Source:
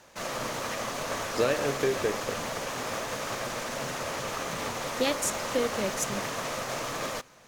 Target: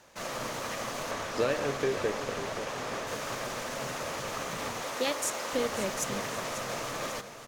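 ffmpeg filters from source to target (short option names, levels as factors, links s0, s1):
-filter_complex "[0:a]asettb=1/sr,asplit=3[s0][s1][s2];[s0]atrim=end=1.114[s3];[s1]atrim=start=1.11:end=3.07,asetpts=PTS-STARTPTS,afade=t=in:d=0.004:c=qsin,afade=t=out:st=1.956:d=0.004:c=qsin,highshelf=f=8600:g=-9.5[s4];[s2]atrim=start=3.066[s5];[s3][s4]acrossfade=d=0.004:c1=hsin:c2=qsin[s6];[s6][s5]acrossfade=d=0.004:c1=qsin:c2=hsin,asettb=1/sr,asplit=3[s7][s8][s9];[s7]atrim=end=4.814[s10];[s8]atrim=start=4.81:end=5.53,asetpts=PTS-STARTPTS,afade=t=in:d=0.004:c=qsin,afade=t=out:st=0.716:d=0.004:c=qsin,highpass=290[s11];[s9]atrim=start=5.526[s12];[s10][s11]acrossfade=d=0.004:c1=hsin:c2=qsin[s13];[s13][s12]acrossfade=d=0.004:c1=qsin:c2=hsin,aecho=1:1:542|1084|1626|2168|2710:0.251|0.123|0.0603|0.0296|0.0145,volume=0.75"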